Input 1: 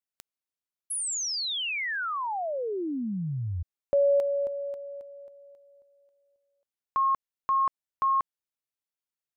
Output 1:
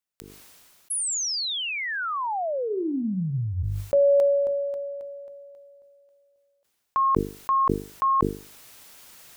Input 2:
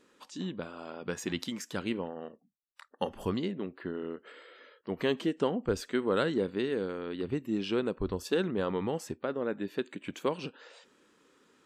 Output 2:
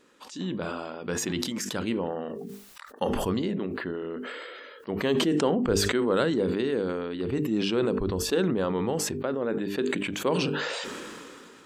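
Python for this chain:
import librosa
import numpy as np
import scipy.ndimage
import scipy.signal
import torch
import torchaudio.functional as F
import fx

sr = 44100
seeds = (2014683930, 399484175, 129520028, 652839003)

y = fx.hum_notches(x, sr, base_hz=50, count=9)
y = fx.dynamic_eq(y, sr, hz=2300.0, q=0.77, threshold_db=-45.0, ratio=4.0, max_db=-3)
y = fx.sustainer(y, sr, db_per_s=22.0)
y = F.gain(torch.from_numpy(y), 4.0).numpy()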